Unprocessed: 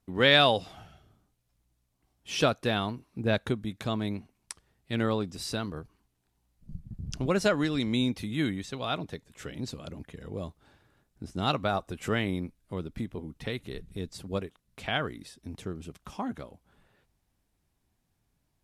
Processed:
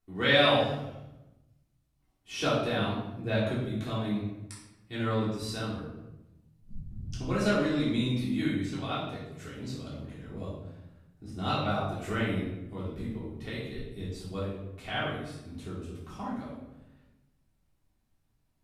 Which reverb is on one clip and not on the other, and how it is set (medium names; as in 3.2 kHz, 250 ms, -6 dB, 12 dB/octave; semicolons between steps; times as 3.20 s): simulated room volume 350 m³, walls mixed, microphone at 3.4 m; trim -11 dB